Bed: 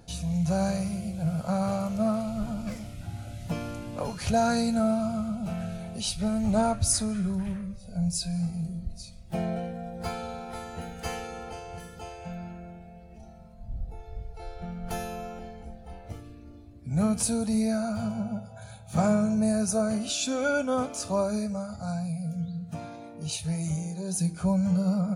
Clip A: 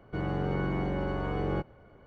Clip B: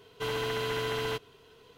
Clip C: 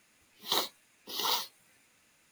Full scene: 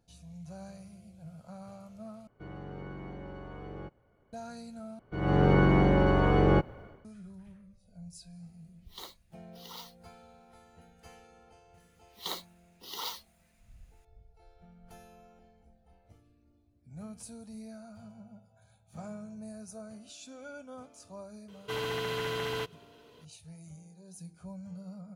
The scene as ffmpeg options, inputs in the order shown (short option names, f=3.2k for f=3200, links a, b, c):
-filter_complex "[1:a]asplit=2[a][b];[3:a]asplit=2[c][d];[0:a]volume=-19.5dB[e];[b]dynaudnorm=f=110:g=5:m=16dB[f];[2:a]highpass=40[g];[e]asplit=3[h][i][j];[h]atrim=end=2.274[k];[a]atrim=end=2.06,asetpts=PTS-STARTPTS,volume=-12.5dB[l];[i]atrim=start=4.326:end=4.994[m];[f]atrim=end=2.06,asetpts=PTS-STARTPTS,volume=-7.5dB[n];[j]atrim=start=7.046[o];[c]atrim=end=2.31,asetpts=PTS-STARTPTS,volume=-16dB,afade=t=in:d=0.004:c=hsin,afade=t=out:st=2.306:d=0.004:c=hsin,adelay=8460[p];[d]atrim=end=2.31,asetpts=PTS-STARTPTS,volume=-7.5dB,afade=t=in:d=0.004:c=hsin,afade=t=out:st=2.306:d=0.004:c=hsin,adelay=11740[q];[g]atrim=end=1.77,asetpts=PTS-STARTPTS,volume=-2dB,afade=t=in:d=0.004:c=hsin,afade=t=out:st=1.766:d=0.004:c=hsin,adelay=947268S[r];[k][l]acrossfade=d=0.004:c1=hsin:c2=hsin[s];[s][m]acrossfade=d=0.004:c1=hsin:c2=hsin[t];[t][n]acrossfade=d=0.004:c1=hsin:c2=hsin[u];[u][o]acrossfade=d=0.004:c1=hsin:c2=hsin[v];[v][p][q][r]amix=inputs=4:normalize=0"